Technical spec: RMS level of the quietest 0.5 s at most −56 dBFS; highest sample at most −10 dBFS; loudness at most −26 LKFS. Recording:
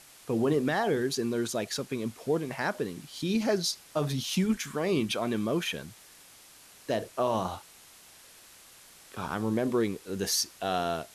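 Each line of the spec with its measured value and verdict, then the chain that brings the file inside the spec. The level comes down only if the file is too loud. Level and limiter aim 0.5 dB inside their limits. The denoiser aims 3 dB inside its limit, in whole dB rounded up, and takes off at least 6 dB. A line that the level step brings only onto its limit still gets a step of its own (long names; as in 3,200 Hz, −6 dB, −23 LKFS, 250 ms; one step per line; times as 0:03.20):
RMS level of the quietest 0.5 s −54 dBFS: out of spec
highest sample −15.5 dBFS: in spec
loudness −30.0 LKFS: in spec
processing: broadband denoise 6 dB, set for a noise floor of −54 dBFS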